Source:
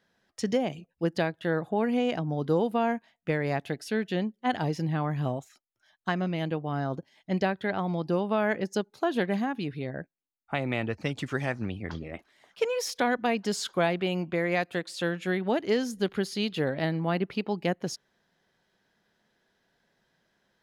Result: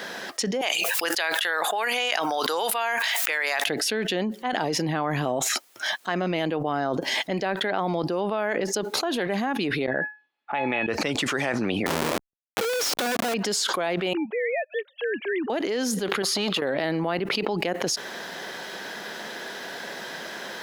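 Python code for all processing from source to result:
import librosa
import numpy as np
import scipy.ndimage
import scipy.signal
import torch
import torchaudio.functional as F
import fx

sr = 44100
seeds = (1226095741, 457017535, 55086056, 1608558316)

y = fx.chain(x, sr, fx.highpass(hz=1200.0, slope=12),
    fx.high_shelf(hz=5100.0, db=8.0),
    fx.sustainer(db_per_s=58.0), at=(0.61, 3.66))
y = fx.chain(y, sr, fx.lowpass(hz=3400.0, slope=24),
    fx.comb_fb(f0_hz=850.0, decay_s=0.29, harmonics='all', damping=0.0, mix_pct=90), at=(9.86, 10.88))
y = fx.chain(y, sr, fx.notch(hz=2000.0, q=6.2),
    fx.schmitt(flips_db=-42.0),
    fx.env_flatten(amount_pct=50), at=(11.86, 13.34))
y = fx.chain(y, sr, fx.sine_speech(),
    fx.upward_expand(threshold_db=-49.0, expansion=2.5), at=(14.13, 15.5))
y = fx.chain(y, sr, fx.peak_eq(hz=1200.0, db=12.5, octaves=0.39),
    fx.over_compress(threshold_db=-33.0, ratio=-1.0),
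    fx.transformer_sat(knee_hz=670.0), at=(16.22, 16.62))
y = scipy.signal.sosfilt(scipy.signal.butter(2, 320.0, 'highpass', fs=sr, output='sos'), y)
y = fx.env_flatten(y, sr, amount_pct=100)
y = y * 10.0 ** (-2.5 / 20.0)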